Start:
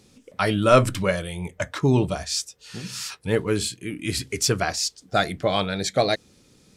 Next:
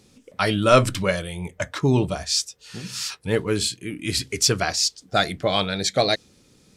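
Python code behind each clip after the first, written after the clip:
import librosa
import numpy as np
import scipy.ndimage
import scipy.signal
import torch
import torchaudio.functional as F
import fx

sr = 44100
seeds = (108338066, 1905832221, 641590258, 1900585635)

y = fx.dynamic_eq(x, sr, hz=4400.0, q=0.78, threshold_db=-36.0, ratio=4.0, max_db=5)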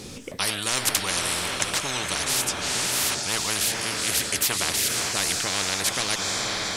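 y = fx.echo_diffused(x, sr, ms=466, feedback_pct=46, wet_db=-13.5)
y = fx.spectral_comp(y, sr, ratio=10.0)
y = F.gain(torch.from_numpy(y), 1.5).numpy()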